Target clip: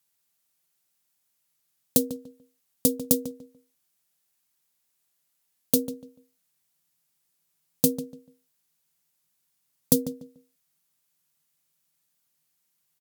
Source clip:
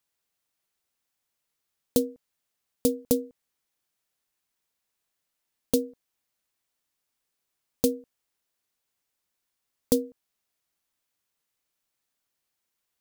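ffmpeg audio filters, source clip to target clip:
-filter_complex "[0:a]highpass=66,aemphasis=mode=production:type=cd,bandreject=f=460:w=12,asetnsamples=n=441:p=0,asendcmd='5.76 equalizer g 14.5',equalizer=f=160:t=o:w=0.47:g=7.5,asplit=2[s0][s1];[s1]adelay=146,lowpass=f=2700:p=1,volume=0.251,asplit=2[s2][s3];[s3]adelay=146,lowpass=f=2700:p=1,volume=0.25,asplit=2[s4][s5];[s5]adelay=146,lowpass=f=2700:p=1,volume=0.25[s6];[s0][s2][s4][s6]amix=inputs=4:normalize=0"

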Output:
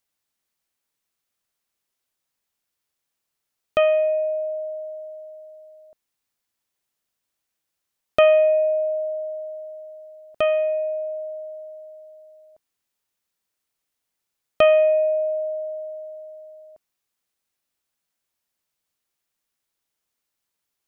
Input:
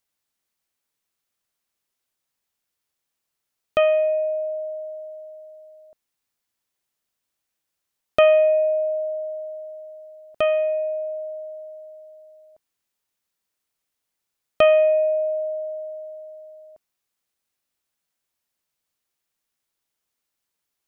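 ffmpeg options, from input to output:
-filter_complex "[0:a]asettb=1/sr,asplit=3[s0][s1][s2];[s0]atrim=end=16.164[s3];[s1]atrim=start=16.16:end=16.62,asetpts=PTS-STARTPTS,afade=t=in:d=0.004:c=qsin,afade=t=out:st=0.456:d=0.004:c=qsin,equalizer=f=73:t=o:w=0.77:g=13.5[s4];[s2]atrim=start=16.616[s5];[s3][s4]acrossfade=d=0.004:c1=hsin:c2=qsin[s6];[s6][s5]acrossfade=d=0.004:c1=qsin:c2=hsin"

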